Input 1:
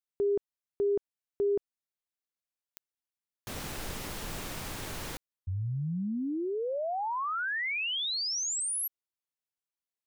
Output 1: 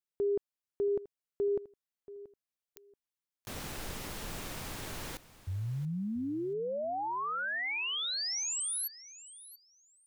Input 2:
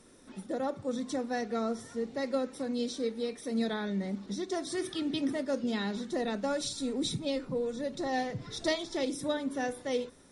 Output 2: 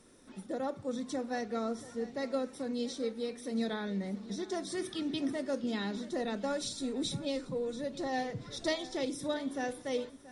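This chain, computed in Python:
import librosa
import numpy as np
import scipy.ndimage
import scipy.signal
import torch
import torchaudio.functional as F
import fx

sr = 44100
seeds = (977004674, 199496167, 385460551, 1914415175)

y = fx.echo_feedback(x, sr, ms=681, feedback_pct=19, wet_db=-17.0)
y = F.gain(torch.from_numpy(y), -2.5).numpy()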